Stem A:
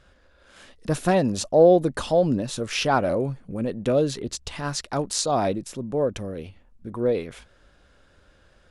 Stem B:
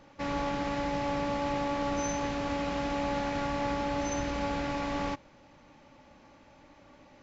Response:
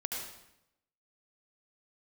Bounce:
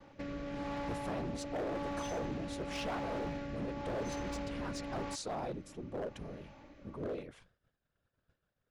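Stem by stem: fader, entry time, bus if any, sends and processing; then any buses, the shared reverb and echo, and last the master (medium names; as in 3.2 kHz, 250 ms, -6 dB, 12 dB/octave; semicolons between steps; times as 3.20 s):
-12.5 dB, 0.00 s, no send, compression 4:1, threshold -21 dBFS, peak gain reduction 9.5 dB; whisper effect
+2.5 dB, 0.00 s, no send, compression 6:1, threshold -37 dBFS, peak gain reduction 10 dB; rotary cabinet horn 0.9 Hz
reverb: none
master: expander -60 dBFS; treble shelf 4.3 kHz -7 dB; hard clipper -33.5 dBFS, distortion -12 dB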